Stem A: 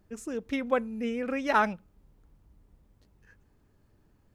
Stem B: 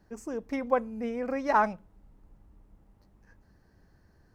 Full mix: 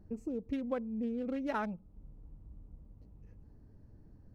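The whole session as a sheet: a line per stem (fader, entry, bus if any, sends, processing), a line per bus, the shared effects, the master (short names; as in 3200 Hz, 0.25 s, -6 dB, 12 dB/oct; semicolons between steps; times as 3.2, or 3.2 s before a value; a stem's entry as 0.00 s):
-1.0 dB, 0.00 s, no send, Wiener smoothing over 25 samples; low shelf 500 Hz +10 dB; notch 380 Hz, Q 12
-14.0 dB, 0.00 s, polarity flipped, no send, compressor, threshold -33 dBFS, peak gain reduction 13.5 dB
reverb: off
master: compressor 2.5:1, threshold -38 dBFS, peak gain reduction 13.5 dB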